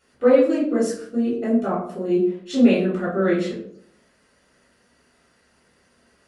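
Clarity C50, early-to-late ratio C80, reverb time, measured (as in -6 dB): 4.0 dB, 8.0 dB, 0.60 s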